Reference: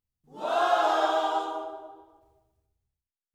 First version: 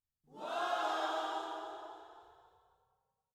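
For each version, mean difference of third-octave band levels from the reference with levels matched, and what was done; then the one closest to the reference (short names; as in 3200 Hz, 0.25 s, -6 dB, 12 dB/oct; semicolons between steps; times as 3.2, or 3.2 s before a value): 4.0 dB: dynamic EQ 610 Hz, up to -5 dB, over -36 dBFS, Q 0.83; frequency-shifting echo 0.27 s, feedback 44%, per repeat +30 Hz, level -9 dB; gain -8.5 dB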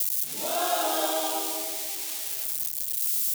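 13.0 dB: switching spikes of -20.5 dBFS; bell 1100 Hz -11 dB 1.9 oct; gain +3.5 dB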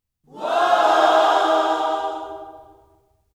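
5.5 dB: vocal rider 2 s; bouncing-ball echo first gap 0.35 s, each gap 0.6×, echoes 5; gain +7.5 dB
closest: first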